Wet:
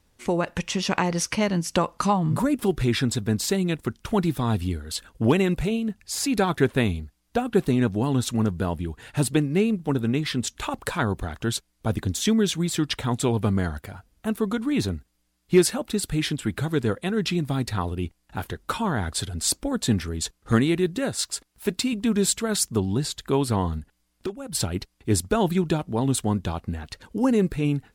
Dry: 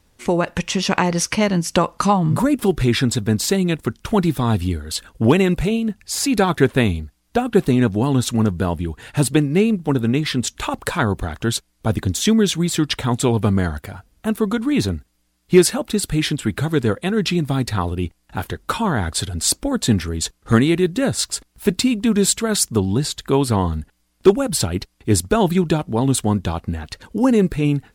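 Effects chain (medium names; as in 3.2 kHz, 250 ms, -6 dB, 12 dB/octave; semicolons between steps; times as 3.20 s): 20.98–21.93 s: bass shelf 200 Hz -7.5 dB; 23.78–24.55 s: compression 3:1, threshold -27 dBFS, peak gain reduction 15.5 dB; trim -5.5 dB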